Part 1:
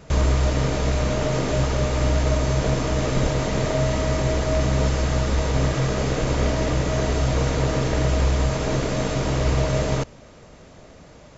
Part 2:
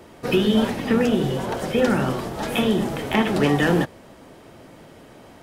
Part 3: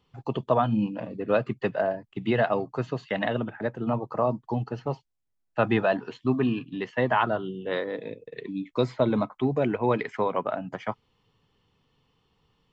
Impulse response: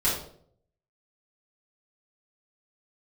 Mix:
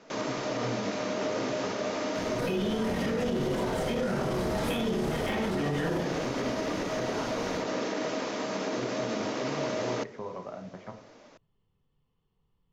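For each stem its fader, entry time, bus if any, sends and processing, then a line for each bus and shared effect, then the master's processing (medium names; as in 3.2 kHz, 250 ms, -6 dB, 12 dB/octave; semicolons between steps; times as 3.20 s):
-5.0 dB, 0.00 s, no bus, no send, elliptic band-pass 230–6000 Hz
-5.0 dB, 2.15 s, bus A, send -3.5 dB, compression, threshold -24 dBFS, peak gain reduction 10 dB
-14.5 dB, 0.00 s, bus A, send -16.5 dB, tilt EQ -2 dB/octave
bus A: 0.0 dB, compression, threshold -37 dBFS, peak gain reduction 10.5 dB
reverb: on, RT60 0.60 s, pre-delay 5 ms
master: peak limiter -21.5 dBFS, peak gain reduction 11.5 dB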